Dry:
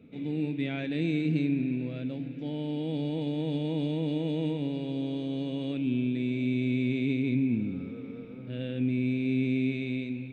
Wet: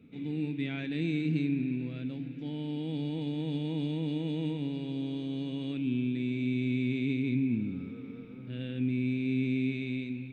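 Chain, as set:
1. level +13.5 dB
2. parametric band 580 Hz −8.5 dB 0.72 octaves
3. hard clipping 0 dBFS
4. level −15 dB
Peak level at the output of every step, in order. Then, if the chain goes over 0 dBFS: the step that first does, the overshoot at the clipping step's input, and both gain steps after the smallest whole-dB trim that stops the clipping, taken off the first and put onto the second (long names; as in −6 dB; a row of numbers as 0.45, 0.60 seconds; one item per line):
−3.0, −4.0, −4.0, −19.0 dBFS
no step passes full scale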